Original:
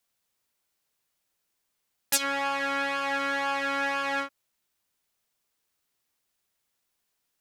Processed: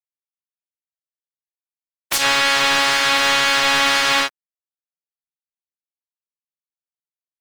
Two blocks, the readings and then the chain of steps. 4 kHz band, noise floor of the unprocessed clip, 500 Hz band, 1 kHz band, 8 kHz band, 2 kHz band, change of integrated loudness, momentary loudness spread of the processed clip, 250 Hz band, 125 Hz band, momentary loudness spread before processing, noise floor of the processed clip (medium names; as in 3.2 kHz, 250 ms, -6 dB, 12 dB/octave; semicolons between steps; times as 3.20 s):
+19.0 dB, -79 dBFS, +8.0 dB, +9.5 dB, +11.0 dB, +12.0 dB, +12.5 dB, 4 LU, +6.0 dB, no reading, 3 LU, under -85 dBFS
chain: spectral peaks clipped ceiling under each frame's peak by 24 dB; overdrive pedal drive 27 dB, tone 4 kHz, clips at -4.5 dBFS; crossover distortion -46 dBFS